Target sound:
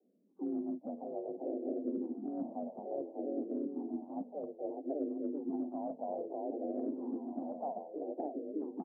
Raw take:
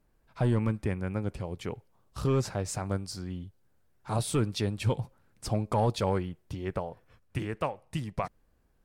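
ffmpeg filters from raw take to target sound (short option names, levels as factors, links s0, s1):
-filter_complex "[0:a]asplit=2[s0][s1];[s1]aecho=0:1:600|990|1244|1408|1515:0.631|0.398|0.251|0.158|0.1[s2];[s0][s2]amix=inputs=2:normalize=0,afreqshift=150,asplit=3[s3][s4][s5];[s4]asetrate=29433,aresample=44100,atempo=1.49831,volume=0.141[s6];[s5]asetrate=58866,aresample=44100,atempo=0.749154,volume=0.355[s7];[s3][s6][s7]amix=inputs=3:normalize=0,asuperpass=centerf=390:order=12:qfactor=0.69,areverse,acompressor=threshold=0.0224:ratio=6,areverse,asplit=2[s8][s9];[s9]afreqshift=-0.6[s10];[s8][s10]amix=inputs=2:normalize=1,volume=1.12"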